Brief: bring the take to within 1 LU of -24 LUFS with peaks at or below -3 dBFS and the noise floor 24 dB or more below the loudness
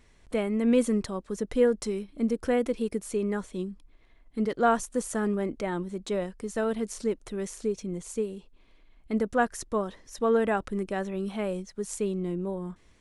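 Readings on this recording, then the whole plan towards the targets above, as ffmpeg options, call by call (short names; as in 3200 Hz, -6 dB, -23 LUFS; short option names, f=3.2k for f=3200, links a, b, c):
loudness -29.5 LUFS; peak -12.0 dBFS; loudness target -24.0 LUFS
-> -af "volume=5.5dB"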